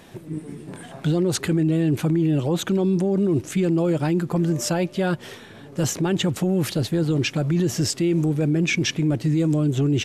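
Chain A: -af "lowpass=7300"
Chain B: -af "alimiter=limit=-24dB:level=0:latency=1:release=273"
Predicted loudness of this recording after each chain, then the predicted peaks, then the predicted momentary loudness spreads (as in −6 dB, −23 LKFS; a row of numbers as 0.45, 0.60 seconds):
−22.0, −32.5 LKFS; −13.0, −24.0 dBFS; 11, 6 LU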